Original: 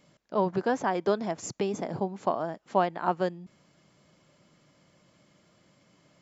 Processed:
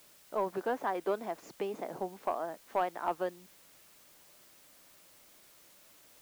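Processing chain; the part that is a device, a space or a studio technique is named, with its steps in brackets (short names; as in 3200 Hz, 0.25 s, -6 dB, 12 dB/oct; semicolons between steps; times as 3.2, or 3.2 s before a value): tape answering machine (BPF 330–2800 Hz; soft clip -16 dBFS, distortion -19 dB; wow and flutter; white noise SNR 22 dB); gain -4 dB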